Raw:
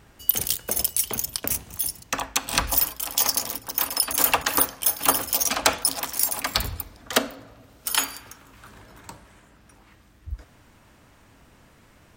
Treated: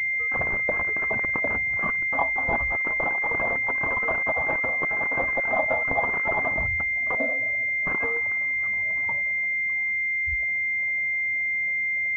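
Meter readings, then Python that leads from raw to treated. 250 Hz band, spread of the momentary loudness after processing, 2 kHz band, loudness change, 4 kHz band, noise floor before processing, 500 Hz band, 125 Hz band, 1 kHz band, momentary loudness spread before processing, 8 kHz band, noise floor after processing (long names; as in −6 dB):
−1.5 dB, 1 LU, +13.5 dB, 0.0 dB, below −30 dB, −55 dBFS, +4.0 dB, 0.0 dB, −0.5 dB, 12 LU, below −35 dB, −26 dBFS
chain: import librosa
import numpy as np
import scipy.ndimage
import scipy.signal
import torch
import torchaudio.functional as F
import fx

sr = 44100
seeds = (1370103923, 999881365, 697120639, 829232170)

y = fx.spec_expand(x, sr, power=1.7)
y = scipy.signal.sosfilt(scipy.signal.butter(2, 69.0, 'highpass', fs=sr, output='sos'), y)
y = fx.over_compress(y, sr, threshold_db=-27.0, ratio=-0.5)
y = fx.low_shelf_res(y, sr, hz=480.0, db=-6.5, q=3.0)
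y = fx.pwm(y, sr, carrier_hz=2100.0)
y = F.gain(torch.from_numpy(y), 2.5).numpy()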